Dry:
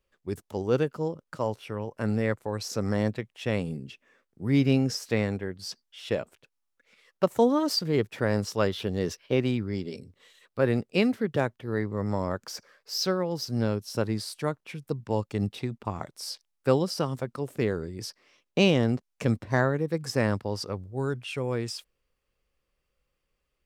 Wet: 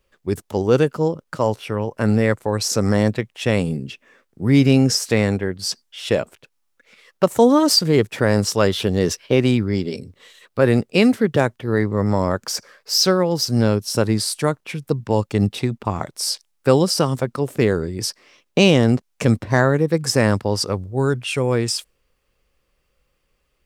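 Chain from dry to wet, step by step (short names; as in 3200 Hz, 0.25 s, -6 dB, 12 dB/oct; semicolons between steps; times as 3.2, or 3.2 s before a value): dynamic EQ 8600 Hz, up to +7 dB, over -53 dBFS, Q 1; in parallel at +0.5 dB: limiter -17 dBFS, peak gain reduction 9 dB; on the sum: gain +4 dB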